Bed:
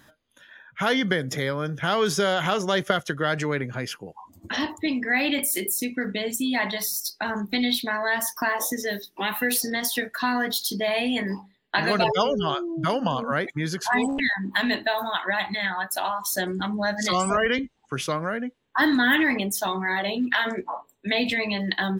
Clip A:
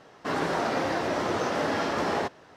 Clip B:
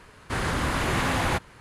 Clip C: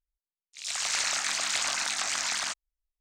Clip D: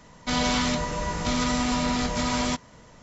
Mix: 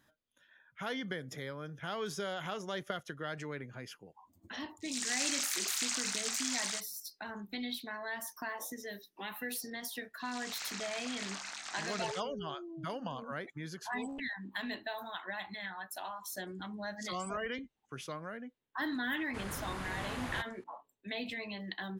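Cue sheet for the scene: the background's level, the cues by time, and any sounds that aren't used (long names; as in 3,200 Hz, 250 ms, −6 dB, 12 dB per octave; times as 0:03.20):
bed −15.5 dB
0:04.27: mix in C −12.5 dB + spectral tilt +3 dB per octave
0:09.67: mix in C −12.5 dB + high-shelf EQ 9,200 Hz −10 dB
0:19.04: mix in B −15.5 dB
not used: A, D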